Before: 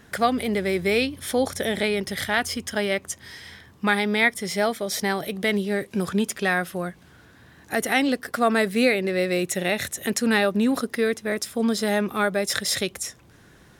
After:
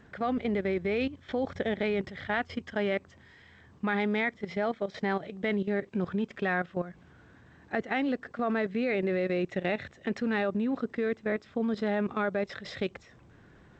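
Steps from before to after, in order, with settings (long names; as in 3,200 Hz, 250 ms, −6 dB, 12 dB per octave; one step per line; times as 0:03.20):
high-frequency loss of the air 400 metres
output level in coarse steps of 14 dB
G.722 64 kbit/s 16,000 Hz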